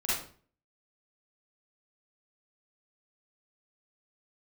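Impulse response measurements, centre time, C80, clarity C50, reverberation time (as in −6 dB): 62 ms, 6.0 dB, −1.5 dB, 0.45 s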